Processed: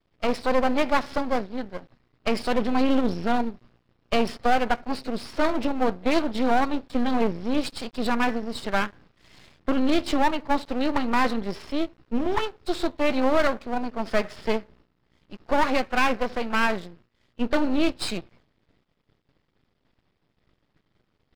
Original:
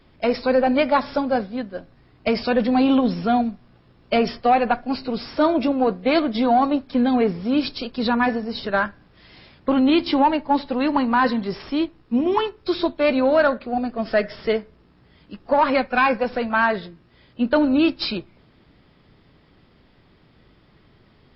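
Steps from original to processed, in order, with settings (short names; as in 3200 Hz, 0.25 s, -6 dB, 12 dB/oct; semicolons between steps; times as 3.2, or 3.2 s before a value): half-wave rectifier; expander -48 dBFS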